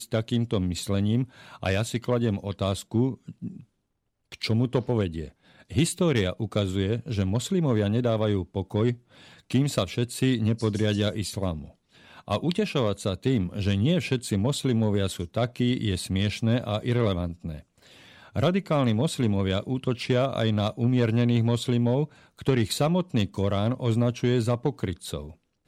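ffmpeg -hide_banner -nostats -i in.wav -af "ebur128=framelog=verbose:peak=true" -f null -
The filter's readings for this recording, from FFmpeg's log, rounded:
Integrated loudness:
  I:         -26.2 LUFS
  Threshold: -36.7 LUFS
Loudness range:
  LRA:         3.6 LU
  Threshold: -46.7 LUFS
  LRA low:   -28.5 LUFS
  LRA high:  -24.9 LUFS
True peak:
  Peak:      -12.0 dBFS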